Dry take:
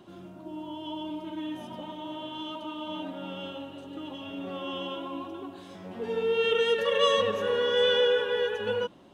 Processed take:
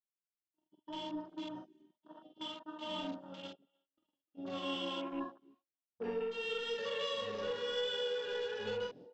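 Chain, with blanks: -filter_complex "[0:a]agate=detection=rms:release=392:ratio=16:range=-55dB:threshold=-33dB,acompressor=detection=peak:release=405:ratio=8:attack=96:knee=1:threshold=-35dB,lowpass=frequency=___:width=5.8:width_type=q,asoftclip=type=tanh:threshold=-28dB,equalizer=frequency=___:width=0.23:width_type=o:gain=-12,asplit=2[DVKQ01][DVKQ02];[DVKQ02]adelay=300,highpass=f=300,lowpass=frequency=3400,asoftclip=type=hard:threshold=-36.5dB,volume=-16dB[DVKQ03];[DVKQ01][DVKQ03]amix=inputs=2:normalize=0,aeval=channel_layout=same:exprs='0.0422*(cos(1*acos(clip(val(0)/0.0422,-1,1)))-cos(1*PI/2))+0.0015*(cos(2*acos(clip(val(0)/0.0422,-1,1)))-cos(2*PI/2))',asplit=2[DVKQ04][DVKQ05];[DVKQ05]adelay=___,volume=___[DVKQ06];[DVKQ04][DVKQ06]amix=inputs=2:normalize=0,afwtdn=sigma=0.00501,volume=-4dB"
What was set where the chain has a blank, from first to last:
5100, 81, 47, -3dB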